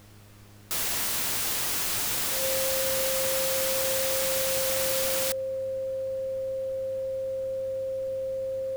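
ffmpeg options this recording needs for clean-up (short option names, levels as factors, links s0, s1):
-af "adeclick=t=4,bandreject=f=102.7:t=h:w=4,bandreject=f=205.4:t=h:w=4,bandreject=f=308.1:t=h:w=4,bandreject=f=410.8:t=h:w=4,bandreject=f=513.5:t=h:w=4,bandreject=f=530:w=30,agate=range=0.0891:threshold=0.0708"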